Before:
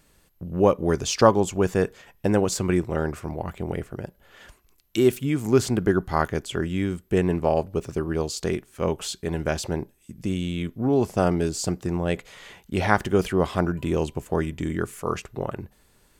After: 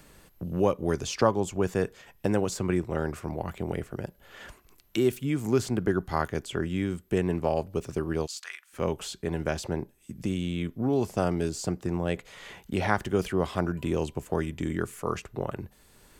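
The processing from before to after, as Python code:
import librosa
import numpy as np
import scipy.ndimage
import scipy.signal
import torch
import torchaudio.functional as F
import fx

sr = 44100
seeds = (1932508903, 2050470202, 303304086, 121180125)

y = fx.highpass(x, sr, hz=1300.0, slope=24, at=(8.25, 8.72), fade=0.02)
y = fx.band_squash(y, sr, depth_pct=40)
y = y * 10.0 ** (-4.5 / 20.0)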